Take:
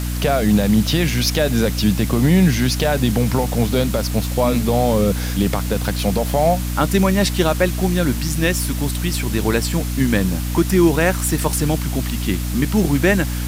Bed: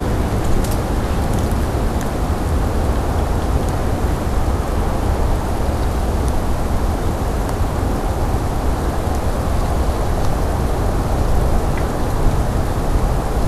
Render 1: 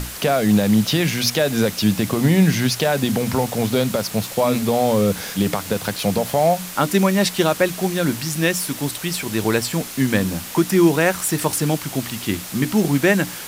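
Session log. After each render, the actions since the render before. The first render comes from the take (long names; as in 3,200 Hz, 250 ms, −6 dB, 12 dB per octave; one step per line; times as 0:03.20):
mains-hum notches 60/120/180/240/300 Hz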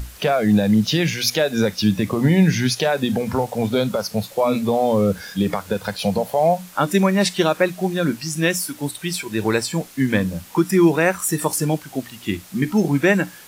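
noise reduction from a noise print 11 dB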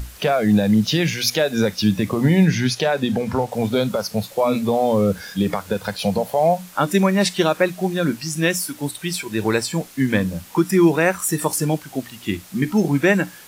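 0:02.45–0:03.52: high-shelf EQ 9,000 Hz −8 dB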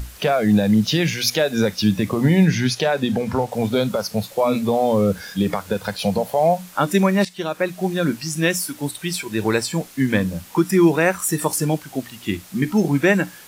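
0:07.25–0:07.89: fade in, from −17 dB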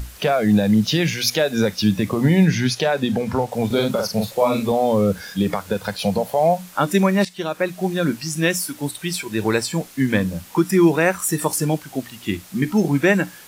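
0:03.66–0:04.72: double-tracking delay 42 ms −3.5 dB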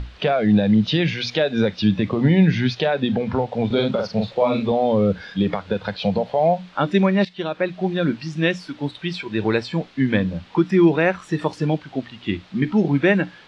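Chebyshev low-pass filter 3,800 Hz, order 3
dynamic equaliser 1,100 Hz, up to −3 dB, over −32 dBFS, Q 1.9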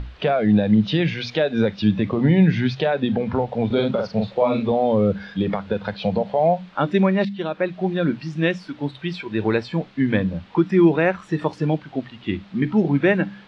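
high-shelf EQ 4,200 Hz −9.5 dB
hum removal 66.44 Hz, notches 3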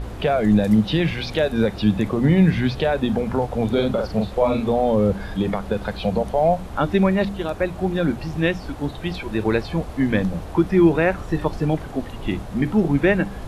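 mix in bed −16 dB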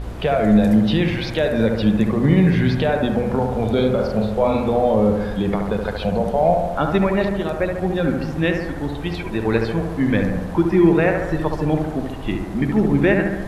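bucket-brigade delay 71 ms, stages 1,024, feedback 65%, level −5 dB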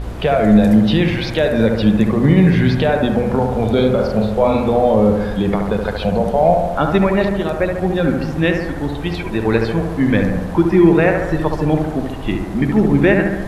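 level +3.5 dB
brickwall limiter −1 dBFS, peak gain reduction 1.5 dB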